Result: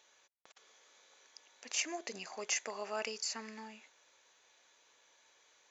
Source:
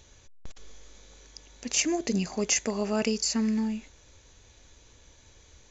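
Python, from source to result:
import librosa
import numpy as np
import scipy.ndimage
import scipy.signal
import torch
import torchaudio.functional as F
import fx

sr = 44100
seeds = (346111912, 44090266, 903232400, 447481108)

y = scipy.signal.sosfilt(scipy.signal.butter(2, 800.0, 'highpass', fs=sr, output='sos'), x)
y = fx.high_shelf(y, sr, hz=3400.0, db=-9.5)
y = y * 10.0 ** (-2.5 / 20.0)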